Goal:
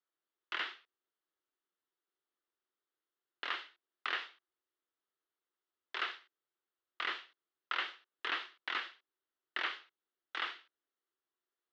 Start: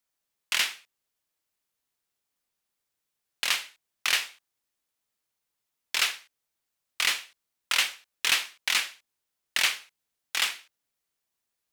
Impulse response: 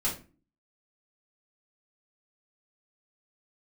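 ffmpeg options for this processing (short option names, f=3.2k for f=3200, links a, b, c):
-filter_complex "[0:a]highpass=f=270:w=0.5412,highpass=f=270:w=1.3066,equalizer=f=360:t=q:w=4:g=9,equalizer=f=600:t=q:w=4:g=-3,equalizer=f=850:t=q:w=4:g=-3,equalizer=f=1.3k:t=q:w=4:g=4,equalizer=f=2.4k:t=q:w=4:g=-10,lowpass=f=3.5k:w=0.5412,lowpass=f=3.5k:w=1.3066,acrossover=split=2600[a][b];[b]acompressor=threshold=-39dB:ratio=4:attack=1:release=60[c];[a][c]amix=inputs=2:normalize=0,volume=-5dB"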